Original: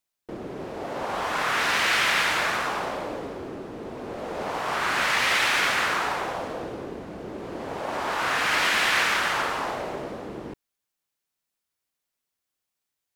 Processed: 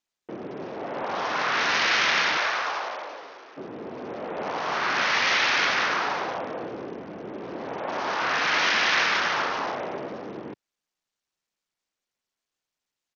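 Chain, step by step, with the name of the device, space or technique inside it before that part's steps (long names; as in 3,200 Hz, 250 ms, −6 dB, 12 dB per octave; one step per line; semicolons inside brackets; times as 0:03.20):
0:02.37–0:03.56: high-pass filter 440 Hz → 1,100 Hz 12 dB per octave
Bluetooth headset (high-pass filter 140 Hz 12 dB per octave; downsampling to 16,000 Hz; SBC 64 kbit/s 48,000 Hz)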